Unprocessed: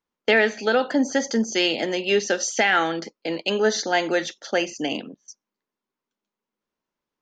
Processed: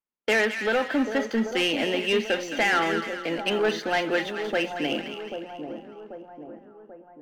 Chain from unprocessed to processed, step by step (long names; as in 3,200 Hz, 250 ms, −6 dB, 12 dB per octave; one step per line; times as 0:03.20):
high shelf with overshoot 4,000 Hz −12 dB, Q 1.5
leveller curve on the samples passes 2
pitch vibrato 4.3 Hz 15 cents
echo with a time of its own for lows and highs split 1,100 Hz, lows 788 ms, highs 215 ms, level −8 dB
level −9 dB